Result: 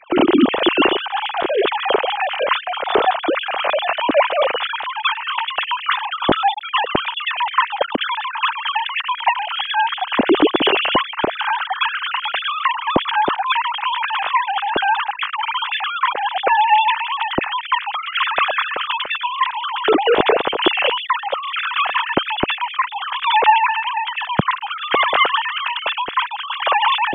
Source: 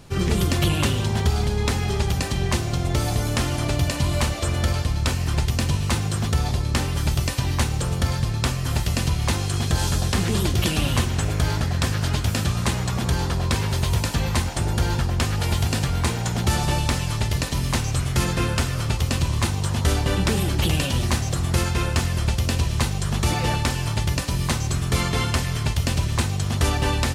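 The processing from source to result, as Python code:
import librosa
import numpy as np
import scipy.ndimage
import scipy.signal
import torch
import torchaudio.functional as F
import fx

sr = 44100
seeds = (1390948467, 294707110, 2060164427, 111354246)

p1 = fx.sine_speech(x, sr)
p2 = fx.dynamic_eq(p1, sr, hz=2000.0, q=1.6, threshold_db=-35.0, ratio=4.0, max_db=-6)
p3 = fx.rider(p2, sr, range_db=10, speed_s=2.0)
p4 = p2 + (p3 * 10.0 ** (3.0 / 20.0))
y = p4 * 10.0 ** (-3.5 / 20.0)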